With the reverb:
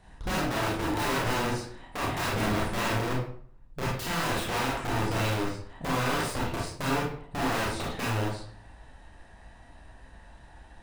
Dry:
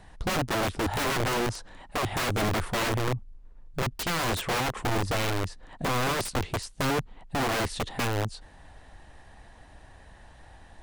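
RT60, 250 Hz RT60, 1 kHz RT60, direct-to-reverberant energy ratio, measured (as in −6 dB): 0.55 s, 0.60 s, 0.55 s, −5.0 dB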